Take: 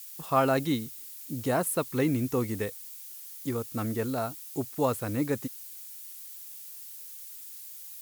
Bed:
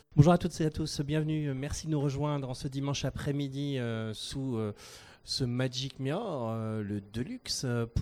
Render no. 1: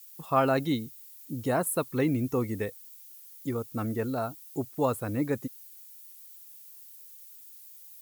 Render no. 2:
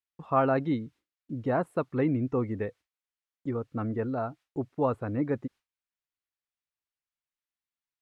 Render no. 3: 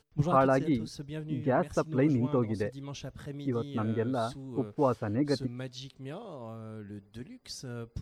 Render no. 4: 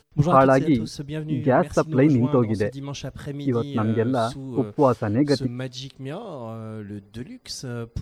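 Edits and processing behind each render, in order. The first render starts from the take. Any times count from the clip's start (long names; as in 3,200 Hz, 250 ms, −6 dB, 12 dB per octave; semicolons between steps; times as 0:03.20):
broadband denoise 9 dB, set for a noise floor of −45 dBFS
low-pass filter 1,900 Hz 12 dB per octave; noise gate with hold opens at −51 dBFS
mix in bed −8.5 dB
level +8.5 dB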